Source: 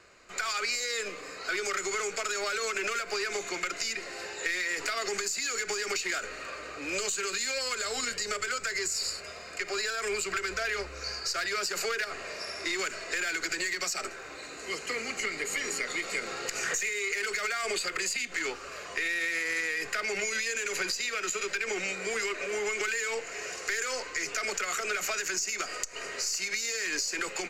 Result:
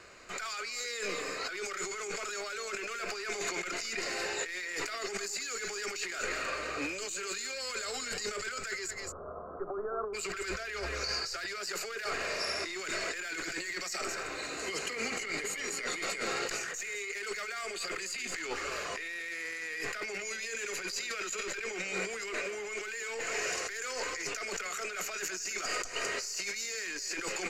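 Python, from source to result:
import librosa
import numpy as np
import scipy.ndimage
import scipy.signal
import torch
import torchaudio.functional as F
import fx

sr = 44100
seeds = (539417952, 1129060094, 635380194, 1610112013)

y = fx.steep_lowpass(x, sr, hz=1300.0, slope=72, at=(8.89, 10.13), fade=0.02)
y = y + 10.0 ** (-14.0 / 20.0) * np.pad(y, (int(215 * sr / 1000.0), 0))[:len(y)]
y = fx.over_compress(y, sr, threshold_db=-37.0, ratio=-1.0)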